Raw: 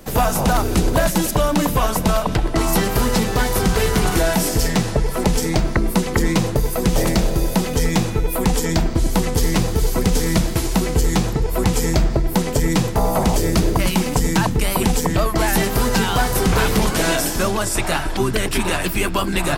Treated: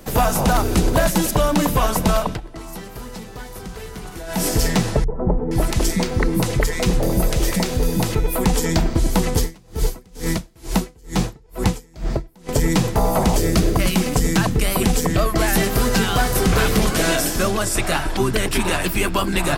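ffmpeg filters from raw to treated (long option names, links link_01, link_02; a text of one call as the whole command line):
ffmpeg -i in.wav -filter_complex "[0:a]asettb=1/sr,asplit=3[link_01][link_02][link_03];[link_01]atrim=end=5.044[link_04];[link_02]atrim=start=5.04:end=8.15,asetpts=PTS-STARTPTS,afade=type=in:duration=0.004:curve=qsin,afade=type=out:start_time=3.106:duration=0.004:curve=qsin,acrossover=split=230|1000[link_05][link_06][link_07];[link_06]adelay=40[link_08];[link_07]adelay=470[link_09];[link_05][link_08][link_09]amix=inputs=3:normalize=0,atrim=end_sample=137151[link_10];[link_03]atrim=start=8.146[link_11];[link_04][link_10]acrossfade=duration=0.004:curve1=hsin:curve2=qsin[link_12];[link_12][link_11]acrossfade=duration=0.004:curve1=qsin:curve2=hsin,asettb=1/sr,asplit=3[link_13][link_14][link_15];[link_13]atrim=end=9.394[link_16];[link_14]atrim=start=9.39:end=12.49,asetpts=PTS-STARTPTS,afade=type=in:duration=0.004:curve=qsin,afade=type=out:start_time=3.096:duration=0.004:curve=qsin,aeval=exprs='val(0)*pow(10,-33*(0.5-0.5*cos(2*PI*2.2*n/s))/20)':channel_layout=same[link_17];[link_15]atrim=start=12.486[link_18];[link_16][link_17]acrossfade=duration=0.004:curve1=hsin:curve2=qsin[link_19];[link_19][link_18]acrossfade=duration=0.004:curve1=qsin:curve2=hsin,asettb=1/sr,asplit=3[link_20][link_21][link_22];[link_20]atrim=end=13.394[link_23];[link_21]atrim=start=13.39:end=17.94,asetpts=PTS-STARTPTS,afade=type=in:duration=0.004:curve=qsin,afade=type=out:start_time=4.546:duration=0.004:curve=qsin,bandreject=frequency=910:width=6.2[link_24];[link_22]atrim=start=17.936[link_25];[link_23][link_24]acrossfade=duration=0.004:curve1=hsin:curve2=qsin[link_26];[link_26][link_25]acrossfade=duration=0.004:curve1=qsin:curve2=hsin,asplit=3[link_27][link_28][link_29];[link_27]atrim=end=2.41,asetpts=PTS-STARTPTS,afade=type=out:start_time=2.22:duration=0.19:silence=0.158489[link_30];[link_28]atrim=start=2.41:end=4.27,asetpts=PTS-STARTPTS,volume=-16dB[link_31];[link_29]atrim=start=4.27,asetpts=PTS-STARTPTS,afade=type=in:duration=0.19:silence=0.158489[link_32];[link_30][link_31][link_32]concat=n=3:v=0:a=1" out.wav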